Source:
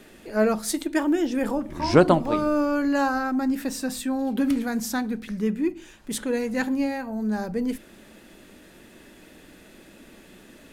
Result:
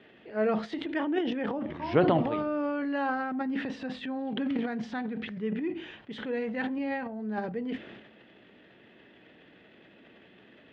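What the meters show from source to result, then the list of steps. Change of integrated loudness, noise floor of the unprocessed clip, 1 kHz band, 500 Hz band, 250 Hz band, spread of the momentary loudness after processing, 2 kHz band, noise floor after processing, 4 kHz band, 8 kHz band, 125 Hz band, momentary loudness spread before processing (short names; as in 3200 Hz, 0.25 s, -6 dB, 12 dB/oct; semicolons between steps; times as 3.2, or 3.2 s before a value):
-6.5 dB, -51 dBFS, -5.5 dB, -5.5 dB, -7.0 dB, 10 LU, -5.0 dB, -57 dBFS, -6.5 dB, under -30 dB, -6.0 dB, 8 LU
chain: transient shaper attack -1 dB, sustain +11 dB; speaker cabinet 100–3400 Hz, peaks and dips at 120 Hz +6 dB, 440 Hz +4 dB, 720 Hz +4 dB, 1900 Hz +5 dB, 3100 Hz +7 dB; gain -9 dB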